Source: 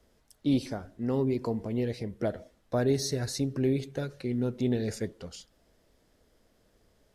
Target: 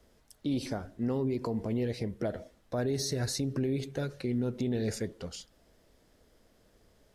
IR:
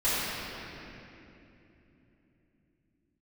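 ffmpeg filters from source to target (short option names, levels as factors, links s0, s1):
-af "alimiter=level_in=1.19:limit=0.0631:level=0:latency=1:release=79,volume=0.841,volume=1.26"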